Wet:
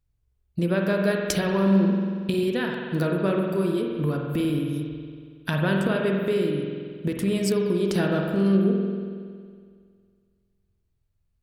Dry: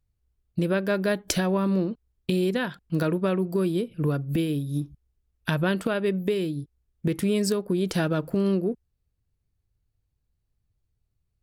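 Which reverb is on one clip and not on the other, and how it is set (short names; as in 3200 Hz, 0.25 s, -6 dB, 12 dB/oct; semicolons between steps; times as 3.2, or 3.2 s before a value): spring tank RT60 2 s, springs 46 ms, chirp 50 ms, DRR 0.5 dB; gain -1 dB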